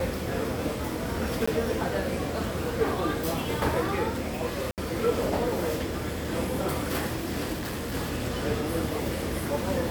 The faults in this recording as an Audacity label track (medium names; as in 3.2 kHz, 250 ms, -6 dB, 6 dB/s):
1.460000	1.480000	dropout 15 ms
4.710000	4.780000	dropout 68 ms
7.520000	7.950000	clipped -29.5 dBFS